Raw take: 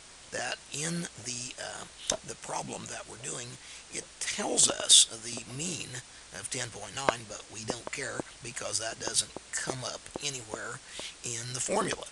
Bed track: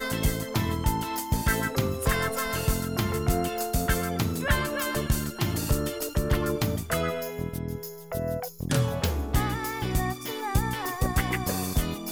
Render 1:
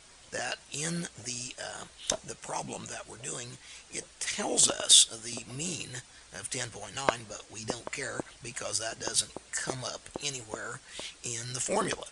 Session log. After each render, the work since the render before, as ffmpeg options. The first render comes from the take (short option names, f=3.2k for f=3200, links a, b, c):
-af "afftdn=nr=6:nf=-52"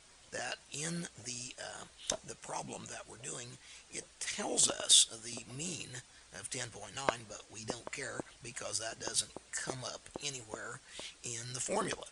-af "volume=-5.5dB"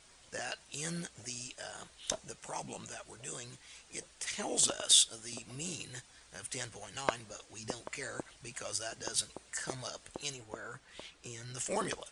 -filter_complex "[0:a]asettb=1/sr,asplit=3[a][b][c];[a]atrim=end=10.344[d];[b]atrim=start=10.34:end=11.57,asetpts=PTS-STARTPTS,afade=t=in:d=0.004:c=qsin,afade=t=out:st=1.226:d=0.004:c=qsin,highshelf=f=4.5k:g=-11[e];[c]atrim=start=11.566[f];[d][e]acrossfade=d=0.004:c1=hsin:c2=qsin[g];[g][f]acrossfade=d=0.004:c1=qsin:c2=hsin"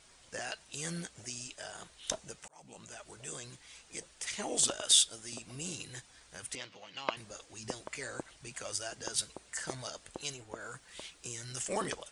-filter_complex "[0:a]asettb=1/sr,asplit=3[a][b][c];[a]atrim=end=6.554[d];[b]atrim=start=6.55:end=7.17,asetpts=PTS-STARTPTS,afade=t=in:d=0.004:c=qsin,afade=t=out:st=0.616:d=0.004:c=qsin,highpass=230,equalizer=f=420:t=q:w=4:g=-8,equalizer=f=740:t=q:w=4:g=-5,equalizer=f=1.6k:t=q:w=4:g=-7,equalizer=f=2.7k:t=q:w=4:g=4,lowpass=f=4.8k:w=0.5412,lowpass=f=4.8k:w=1.3066[e];[c]atrim=start=7.166[f];[d][e]acrossfade=d=0.004:c1=hsin:c2=qsin[g];[g][f]acrossfade=d=0.004:c1=qsin:c2=hsin,asettb=1/sr,asplit=3[h][i][j];[h]atrim=end=10.604[k];[i]atrim=start=10.6:end=11.59,asetpts=PTS-STARTPTS,afade=t=in:d=0.004:c=qsin,afade=t=out:st=0.986:d=0.004:c=qsin,highshelf=f=5.7k:g=11[l];[j]atrim=start=11.586[m];[k][l]acrossfade=d=0.004:c1=hsin:c2=qsin[n];[n][m]acrossfade=d=0.004:c1=qsin:c2=hsin,asplit=2[o][p];[o]atrim=end=2.48,asetpts=PTS-STARTPTS,afade=t=out:st=2.476:d=0.004:c=hsin[q];[p]atrim=start=2.48,asetpts=PTS-STARTPTS,afade=t=in:d=0.63[r];[q][r]concat=n=2:v=0:a=1"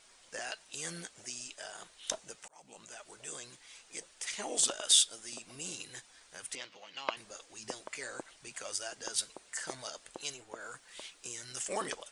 -af "equalizer=f=77:t=o:w=2.5:g=-14.5"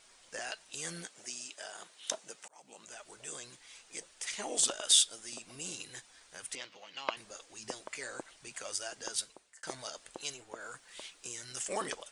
-filter_complex "[0:a]asettb=1/sr,asplit=3[a][b][c];[a]atrim=end=1.084[d];[b]atrim=start=1.08:end=2.87,asetpts=PTS-STARTPTS,afade=t=in:d=0.004:c=qsin,afade=t=out:st=1.786:d=0.004:c=qsin,highpass=190[e];[c]atrim=start=2.866[f];[d][e]acrossfade=d=0.004:c1=hsin:c2=qsin[g];[g][f]acrossfade=d=0.004:c1=qsin:c2=hsin,asplit=2[h][i];[h]atrim=end=9.63,asetpts=PTS-STARTPTS,afade=t=out:st=9.08:d=0.55[j];[i]atrim=start=9.63,asetpts=PTS-STARTPTS,afade=t=in:d=0.004:c=hsin[k];[j][k]concat=n=2:v=0:a=1"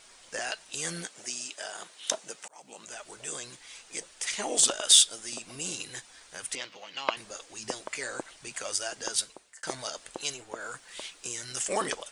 -af "acontrast=65"